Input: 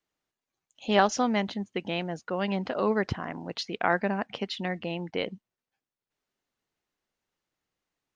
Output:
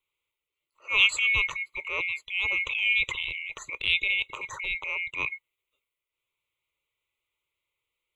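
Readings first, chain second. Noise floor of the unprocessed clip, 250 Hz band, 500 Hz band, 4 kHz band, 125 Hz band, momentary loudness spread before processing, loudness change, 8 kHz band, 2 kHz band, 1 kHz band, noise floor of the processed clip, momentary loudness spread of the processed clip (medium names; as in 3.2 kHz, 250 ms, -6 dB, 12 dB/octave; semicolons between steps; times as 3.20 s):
under -85 dBFS, under -25 dB, -17.5 dB, +7.5 dB, -13.5 dB, 11 LU, +3.5 dB, no reading, +9.5 dB, -11.5 dB, under -85 dBFS, 12 LU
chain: split-band scrambler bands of 2 kHz; transient shaper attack -11 dB, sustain +4 dB; static phaser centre 1.1 kHz, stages 8; trim +3.5 dB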